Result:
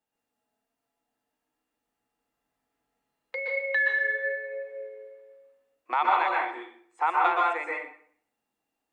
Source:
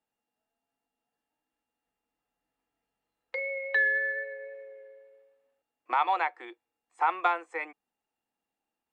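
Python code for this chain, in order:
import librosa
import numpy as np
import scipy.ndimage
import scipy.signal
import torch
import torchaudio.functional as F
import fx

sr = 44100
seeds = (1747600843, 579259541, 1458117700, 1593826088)

y = fx.highpass(x, sr, hz=fx.line((3.45, 500.0), (3.97, 1100.0)), slope=12, at=(3.45, 3.97), fade=0.02)
y = fx.rev_plate(y, sr, seeds[0], rt60_s=0.58, hf_ratio=0.8, predelay_ms=110, drr_db=-2.5)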